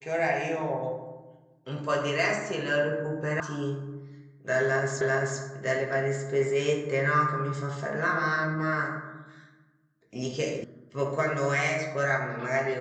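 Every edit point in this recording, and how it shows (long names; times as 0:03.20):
0:03.40: cut off before it has died away
0:05.01: the same again, the last 0.39 s
0:10.64: cut off before it has died away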